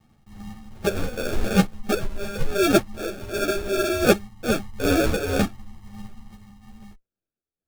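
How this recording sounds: phasing stages 6, 2.7 Hz, lowest notch 470–2000 Hz; aliases and images of a low sample rate 1000 Hz, jitter 0%; random-step tremolo 3.3 Hz; a shimmering, thickened sound

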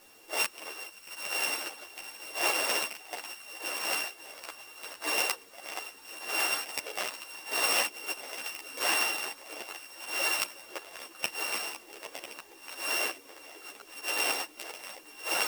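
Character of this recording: a buzz of ramps at a fixed pitch in blocks of 16 samples; random-step tremolo 1.2 Hz; a quantiser's noise floor 10-bit, dither triangular; a shimmering, thickened sound

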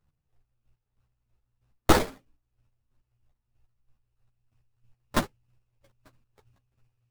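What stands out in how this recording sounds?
a buzz of ramps at a fixed pitch in blocks of 16 samples; chopped level 3.1 Hz, depth 60%, duty 30%; aliases and images of a low sample rate 2700 Hz, jitter 20%; a shimmering, thickened sound

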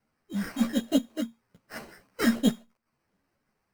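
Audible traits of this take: phasing stages 8, 1.3 Hz, lowest notch 490–2900 Hz; aliases and images of a low sample rate 3500 Hz, jitter 0%; a shimmering, thickened sound

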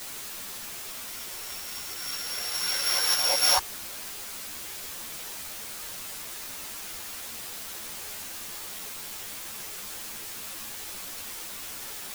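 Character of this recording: a buzz of ramps at a fixed pitch in blocks of 8 samples; random-step tremolo; a quantiser's noise floor 8-bit, dither triangular; a shimmering, thickened sound

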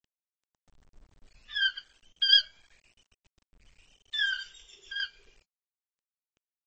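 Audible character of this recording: tremolo saw down 7.4 Hz, depth 65%; a quantiser's noise floor 10-bit, dither none; AAC

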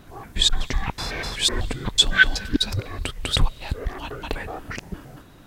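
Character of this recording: noise floor -48 dBFS; spectral tilt -2.5 dB/oct

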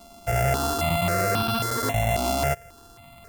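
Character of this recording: a buzz of ramps at a fixed pitch in blocks of 64 samples; notches that jump at a steady rate 3.7 Hz 470–2000 Hz

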